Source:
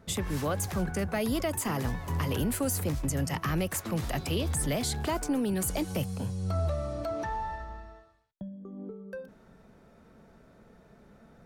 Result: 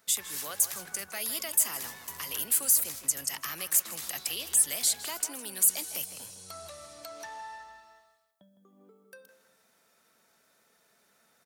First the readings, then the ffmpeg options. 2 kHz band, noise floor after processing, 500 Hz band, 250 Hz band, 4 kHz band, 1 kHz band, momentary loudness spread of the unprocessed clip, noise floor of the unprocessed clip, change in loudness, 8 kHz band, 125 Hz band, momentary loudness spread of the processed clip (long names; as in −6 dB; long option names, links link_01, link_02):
−2.5 dB, −68 dBFS, −13.5 dB, −20.0 dB, +3.0 dB, −8.0 dB, 13 LU, −58 dBFS, +3.5 dB, +9.5 dB, −26.0 dB, 20 LU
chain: -filter_complex "[0:a]aderivative,asplit=2[link_01][link_02];[link_02]adelay=159,lowpass=frequency=2800:poles=1,volume=-10dB,asplit=2[link_03][link_04];[link_04]adelay=159,lowpass=frequency=2800:poles=1,volume=0.36,asplit=2[link_05][link_06];[link_06]adelay=159,lowpass=frequency=2800:poles=1,volume=0.36,asplit=2[link_07][link_08];[link_08]adelay=159,lowpass=frequency=2800:poles=1,volume=0.36[link_09];[link_03][link_05][link_07][link_09]amix=inputs=4:normalize=0[link_10];[link_01][link_10]amix=inputs=2:normalize=0,volume=8.5dB"